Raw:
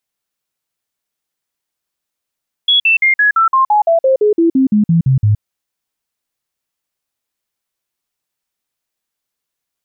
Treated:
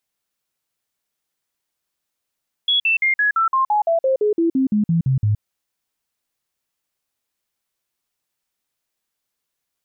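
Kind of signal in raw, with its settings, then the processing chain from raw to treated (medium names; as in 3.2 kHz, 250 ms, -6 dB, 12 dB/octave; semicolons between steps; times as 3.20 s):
stepped sine 3.36 kHz down, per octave 3, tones 16, 0.12 s, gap 0.05 s -7.5 dBFS
peak limiter -14 dBFS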